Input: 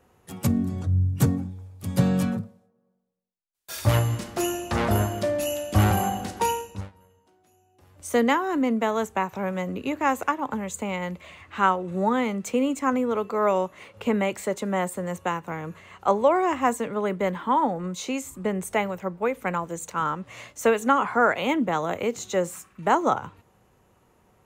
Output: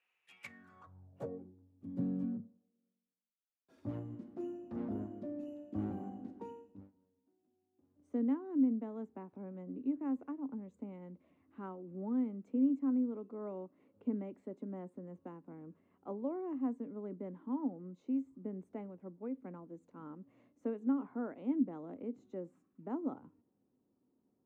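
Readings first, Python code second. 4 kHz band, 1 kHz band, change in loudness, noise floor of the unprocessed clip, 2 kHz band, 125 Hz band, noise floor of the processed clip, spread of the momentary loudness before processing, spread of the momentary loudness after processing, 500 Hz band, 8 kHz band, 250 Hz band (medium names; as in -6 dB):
under -35 dB, -27.5 dB, -14.0 dB, -64 dBFS, under -30 dB, -22.5 dB, -82 dBFS, 10 LU, 18 LU, -19.5 dB, under -40 dB, -9.0 dB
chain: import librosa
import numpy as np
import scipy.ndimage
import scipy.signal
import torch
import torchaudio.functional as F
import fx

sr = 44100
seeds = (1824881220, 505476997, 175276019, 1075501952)

y = fx.peak_eq(x, sr, hz=280.0, db=-2.0, octaves=0.77)
y = fx.filter_sweep_bandpass(y, sr, from_hz=2500.0, to_hz=270.0, start_s=0.38, end_s=1.65, q=6.6)
y = F.gain(torch.from_numpy(y), -1.5).numpy()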